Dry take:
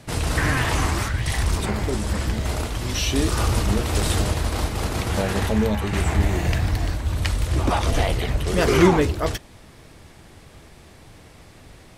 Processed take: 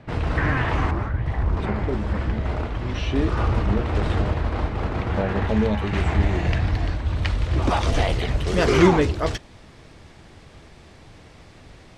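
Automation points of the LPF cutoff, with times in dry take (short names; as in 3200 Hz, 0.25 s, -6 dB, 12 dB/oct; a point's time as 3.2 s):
2200 Hz
from 0.91 s 1200 Hz
from 1.57 s 2100 Hz
from 5.49 s 3700 Hz
from 7.62 s 6300 Hz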